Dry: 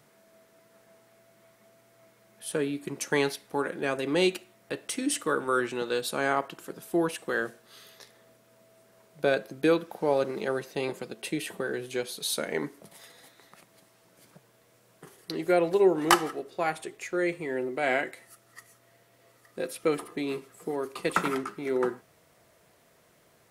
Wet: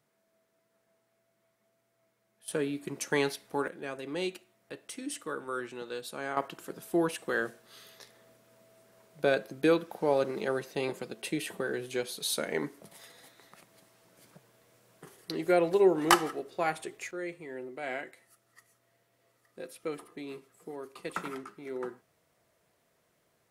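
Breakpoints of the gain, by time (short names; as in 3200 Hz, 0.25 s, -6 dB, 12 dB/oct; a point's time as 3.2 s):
-14.5 dB
from 2.48 s -2.5 dB
from 3.68 s -9.5 dB
from 6.37 s -1.5 dB
from 17.11 s -10 dB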